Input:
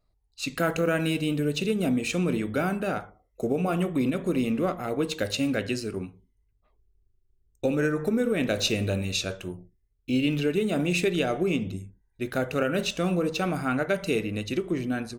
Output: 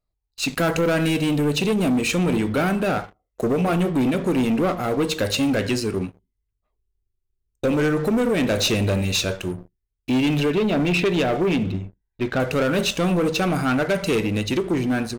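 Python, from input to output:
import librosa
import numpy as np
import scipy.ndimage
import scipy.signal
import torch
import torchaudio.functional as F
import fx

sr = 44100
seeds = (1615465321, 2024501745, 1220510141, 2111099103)

y = fx.lowpass(x, sr, hz=4200.0, slope=24, at=(10.5, 12.4))
y = fx.leveller(y, sr, passes=3)
y = F.gain(torch.from_numpy(y), -2.5).numpy()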